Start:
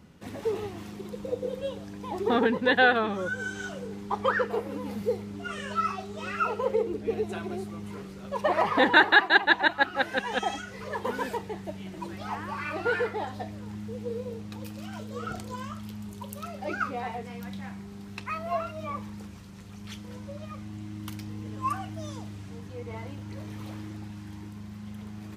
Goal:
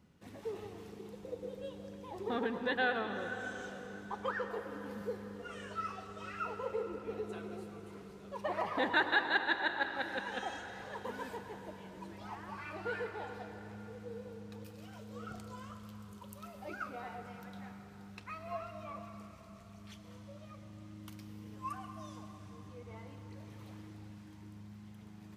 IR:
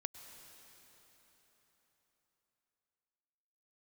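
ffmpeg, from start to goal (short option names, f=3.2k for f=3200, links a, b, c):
-filter_complex "[1:a]atrim=start_sample=2205[a];[0:a][a]afir=irnorm=-1:irlink=0,volume=-8.5dB"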